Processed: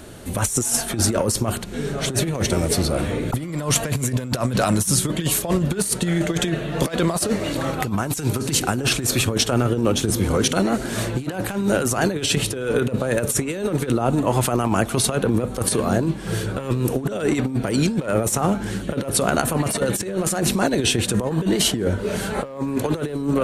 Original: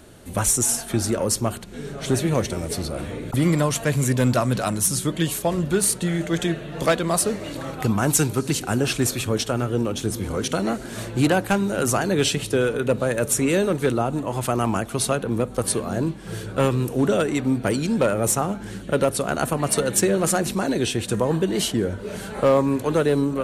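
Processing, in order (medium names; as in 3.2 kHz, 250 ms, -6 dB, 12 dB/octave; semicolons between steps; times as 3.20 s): compressor with a negative ratio -24 dBFS, ratio -0.5; trim +4 dB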